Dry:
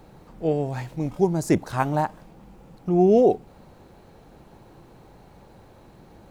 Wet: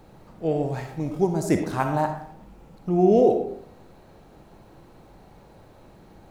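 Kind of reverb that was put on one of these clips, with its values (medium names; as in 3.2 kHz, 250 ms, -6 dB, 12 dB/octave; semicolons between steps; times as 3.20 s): algorithmic reverb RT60 0.66 s, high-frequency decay 0.55×, pre-delay 15 ms, DRR 5 dB; trim -1.5 dB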